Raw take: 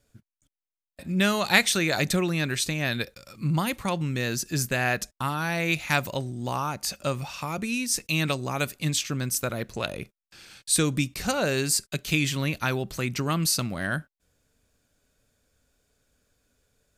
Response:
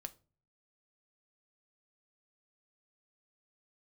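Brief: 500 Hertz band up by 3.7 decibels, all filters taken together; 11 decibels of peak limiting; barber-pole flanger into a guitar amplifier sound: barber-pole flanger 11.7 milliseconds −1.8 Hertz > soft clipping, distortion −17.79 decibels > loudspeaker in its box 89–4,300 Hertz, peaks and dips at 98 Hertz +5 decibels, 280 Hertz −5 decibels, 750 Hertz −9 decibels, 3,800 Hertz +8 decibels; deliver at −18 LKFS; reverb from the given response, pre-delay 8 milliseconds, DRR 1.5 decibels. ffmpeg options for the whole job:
-filter_complex "[0:a]equalizer=frequency=500:width_type=o:gain=6.5,alimiter=limit=-14.5dB:level=0:latency=1,asplit=2[link_01][link_02];[1:a]atrim=start_sample=2205,adelay=8[link_03];[link_02][link_03]afir=irnorm=-1:irlink=0,volume=2.5dB[link_04];[link_01][link_04]amix=inputs=2:normalize=0,asplit=2[link_05][link_06];[link_06]adelay=11.7,afreqshift=-1.8[link_07];[link_05][link_07]amix=inputs=2:normalize=1,asoftclip=threshold=-19.5dB,highpass=89,equalizer=frequency=98:width_type=q:width=4:gain=5,equalizer=frequency=280:width_type=q:width=4:gain=-5,equalizer=frequency=750:width_type=q:width=4:gain=-9,equalizer=frequency=3800:width_type=q:width=4:gain=8,lowpass=frequency=4300:width=0.5412,lowpass=frequency=4300:width=1.3066,volume=12dB"

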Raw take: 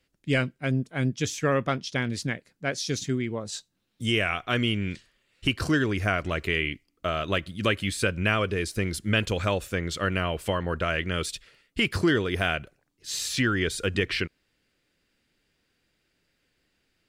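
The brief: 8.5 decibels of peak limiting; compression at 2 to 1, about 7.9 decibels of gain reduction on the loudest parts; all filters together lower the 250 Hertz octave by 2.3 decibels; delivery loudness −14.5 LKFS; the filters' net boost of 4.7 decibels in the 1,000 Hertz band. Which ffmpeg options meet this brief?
ffmpeg -i in.wav -af "equalizer=frequency=250:width_type=o:gain=-3.5,equalizer=frequency=1000:width_type=o:gain=7,acompressor=threshold=-33dB:ratio=2,volume=21dB,alimiter=limit=-2.5dB:level=0:latency=1" out.wav

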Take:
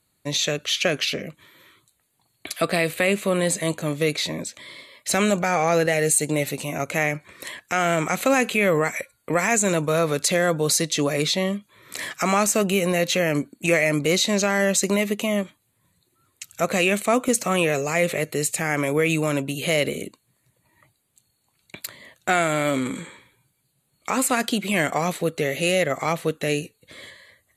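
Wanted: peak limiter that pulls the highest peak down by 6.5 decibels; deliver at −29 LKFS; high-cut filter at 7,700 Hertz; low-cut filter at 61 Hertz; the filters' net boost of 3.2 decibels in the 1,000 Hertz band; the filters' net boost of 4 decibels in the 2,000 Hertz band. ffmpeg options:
ffmpeg -i in.wav -af "highpass=61,lowpass=7700,equalizer=frequency=1000:width_type=o:gain=3.5,equalizer=frequency=2000:width_type=o:gain=4,volume=-7dB,alimiter=limit=-16dB:level=0:latency=1" out.wav

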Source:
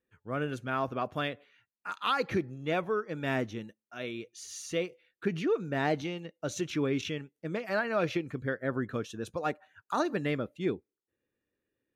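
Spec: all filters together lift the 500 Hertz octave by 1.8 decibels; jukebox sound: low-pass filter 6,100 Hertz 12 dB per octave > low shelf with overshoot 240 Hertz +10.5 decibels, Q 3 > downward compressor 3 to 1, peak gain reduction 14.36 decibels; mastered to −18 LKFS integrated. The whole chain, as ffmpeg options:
ffmpeg -i in.wav -af "lowpass=6100,lowshelf=frequency=240:width_type=q:width=3:gain=10.5,equalizer=frequency=500:width_type=o:gain=6.5,acompressor=threshold=-33dB:ratio=3,volume=17.5dB" out.wav

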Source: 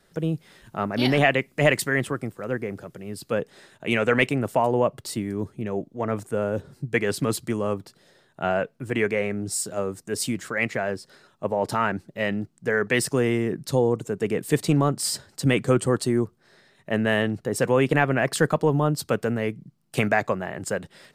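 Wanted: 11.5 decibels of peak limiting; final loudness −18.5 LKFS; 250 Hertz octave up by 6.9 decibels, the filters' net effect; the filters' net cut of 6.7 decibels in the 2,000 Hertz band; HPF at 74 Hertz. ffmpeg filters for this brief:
ffmpeg -i in.wav -af "highpass=74,equalizer=frequency=250:width_type=o:gain=8.5,equalizer=frequency=2000:width_type=o:gain=-8.5,volume=8.5dB,alimiter=limit=-7.5dB:level=0:latency=1" out.wav

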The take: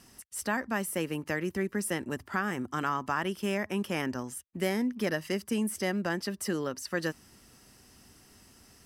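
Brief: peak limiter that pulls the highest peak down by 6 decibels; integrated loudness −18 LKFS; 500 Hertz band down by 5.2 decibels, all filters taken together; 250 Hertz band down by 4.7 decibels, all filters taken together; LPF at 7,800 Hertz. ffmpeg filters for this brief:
ffmpeg -i in.wav -af "lowpass=7800,equalizer=frequency=250:width_type=o:gain=-5,equalizer=frequency=500:width_type=o:gain=-5,volume=18.5dB,alimiter=limit=-5dB:level=0:latency=1" out.wav

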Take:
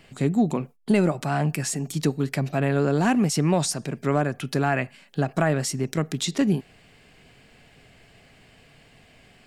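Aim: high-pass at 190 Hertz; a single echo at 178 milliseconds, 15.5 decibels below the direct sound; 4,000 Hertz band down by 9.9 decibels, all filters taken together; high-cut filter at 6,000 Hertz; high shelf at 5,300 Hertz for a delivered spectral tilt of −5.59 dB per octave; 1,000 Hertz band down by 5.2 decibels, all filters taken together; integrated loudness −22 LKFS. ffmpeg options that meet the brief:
ffmpeg -i in.wav -af "highpass=190,lowpass=6000,equalizer=frequency=1000:width_type=o:gain=-7.5,equalizer=frequency=4000:width_type=o:gain=-7.5,highshelf=frequency=5300:gain=-8,aecho=1:1:178:0.168,volume=5.5dB" out.wav

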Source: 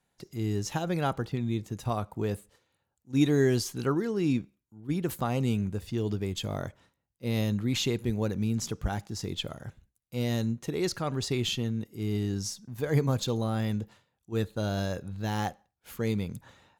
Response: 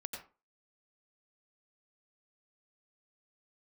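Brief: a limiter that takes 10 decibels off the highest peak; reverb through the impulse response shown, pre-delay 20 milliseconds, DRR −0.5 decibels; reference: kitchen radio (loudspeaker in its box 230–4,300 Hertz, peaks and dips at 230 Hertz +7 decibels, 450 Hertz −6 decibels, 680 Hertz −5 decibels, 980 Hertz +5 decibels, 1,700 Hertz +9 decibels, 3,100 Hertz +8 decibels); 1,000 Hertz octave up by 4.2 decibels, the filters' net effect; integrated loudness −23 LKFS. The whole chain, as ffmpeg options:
-filter_complex "[0:a]equalizer=frequency=1000:width_type=o:gain=4,alimiter=limit=-22.5dB:level=0:latency=1,asplit=2[link_01][link_02];[1:a]atrim=start_sample=2205,adelay=20[link_03];[link_02][link_03]afir=irnorm=-1:irlink=0,volume=1.5dB[link_04];[link_01][link_04]amix=inputs=2:normalize=0,highpass=230,equalizer=frequency=230:width_type=q:width=4:gain=7,equalizer=frequency=450:width_type=q:width=4:gain=-6,equalizer=frequency=680:width_type=q:width=4:gain=-5,equalizer=frequency=980:width_type=q:width=4:gain=5,equalizer=frequency=1700:width_type=q:width=4:gain=9,equalizer=frequency=3100:width_type=q:width=4:gain=8,lowpass=frequency=4300:width=0.5412,lowpass=frequency=4300:width=1.3066,volume=7.5dB"

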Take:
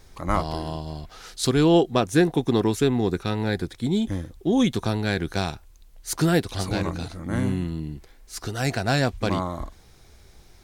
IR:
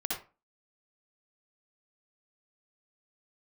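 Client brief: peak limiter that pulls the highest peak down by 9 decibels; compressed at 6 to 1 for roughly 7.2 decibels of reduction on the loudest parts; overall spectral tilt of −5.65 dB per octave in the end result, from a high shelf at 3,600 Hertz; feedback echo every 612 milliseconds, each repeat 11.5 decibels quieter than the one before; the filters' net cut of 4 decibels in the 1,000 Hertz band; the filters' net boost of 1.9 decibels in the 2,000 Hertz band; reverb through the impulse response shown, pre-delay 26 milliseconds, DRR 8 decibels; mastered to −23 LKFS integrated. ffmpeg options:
-filter_complex "[0:a]equalizer=frequency=1000:width_type=o:gain=-7,equalizer=frequency=2000:width_type=o:gain=6,highshelf=frequency=3600:gain=-3,acompressor=threshold=-22dB:ratio=6,alimiter=limit=-21dB:level=0:latency=1,aecho=1:1:612|1224|1836:0.266|0.0718|0.0194,asplit=2[link_01][link_02];[1:a]atrim=start_sample=2205,adelay=26[link_03];[link_02][link_03]afir=irnorm=-1:irlink=0,volume=-12.5dB[link_04];[link_01][link_04]amix=inputs=2:normalize=0,volume=8dB"

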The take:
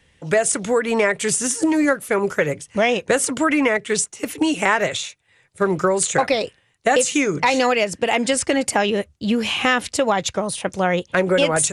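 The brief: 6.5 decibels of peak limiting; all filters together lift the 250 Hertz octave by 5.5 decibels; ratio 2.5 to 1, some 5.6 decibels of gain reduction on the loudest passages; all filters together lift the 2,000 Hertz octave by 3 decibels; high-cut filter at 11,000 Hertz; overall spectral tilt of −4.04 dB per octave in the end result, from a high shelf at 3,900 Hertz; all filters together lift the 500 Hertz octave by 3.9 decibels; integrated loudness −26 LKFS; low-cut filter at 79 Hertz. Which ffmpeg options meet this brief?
ffmpeg -i in.wav -af "highpass=79,lowpass=11000,equalizer=frequency=250:width_type=o:gain=6,equalizer=frequency=500:width_type=o:gain=3,equalizer=frequency=2000:width_type=o:gain=4.5,highshelf=frequency=3900:gain=-5,acompressor=threshold=-18dB:ratio=2.5,volume=-3.5dB,alimiter=limit=-15.5dB:level=0:latency=1" out.wav

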